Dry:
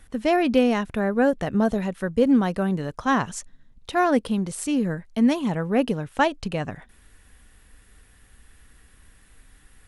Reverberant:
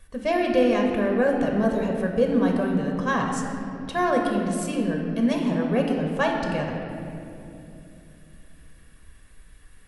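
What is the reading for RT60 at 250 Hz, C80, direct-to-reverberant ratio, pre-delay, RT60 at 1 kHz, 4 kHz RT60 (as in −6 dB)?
3.9 s, 4.0 dB, 1.0 dB, 4 ms, 2.3 s, 1.7 s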